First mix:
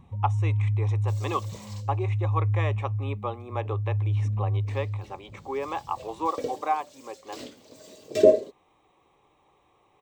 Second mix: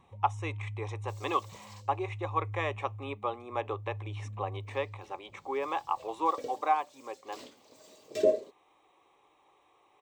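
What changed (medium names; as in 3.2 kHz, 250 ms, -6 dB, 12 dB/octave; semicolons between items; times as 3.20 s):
first sound -8.0 dB; second sound -6.5 dB; master: add bass shelf 300 Hz -7.5 dB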